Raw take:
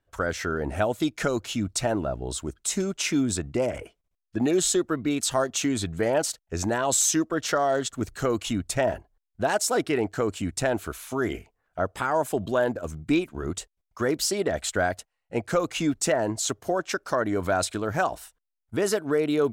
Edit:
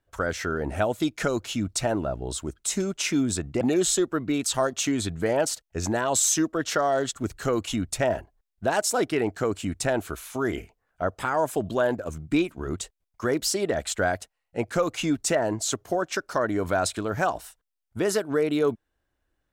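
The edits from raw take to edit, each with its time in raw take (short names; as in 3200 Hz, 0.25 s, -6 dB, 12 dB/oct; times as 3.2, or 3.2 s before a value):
3.61–4.38 cut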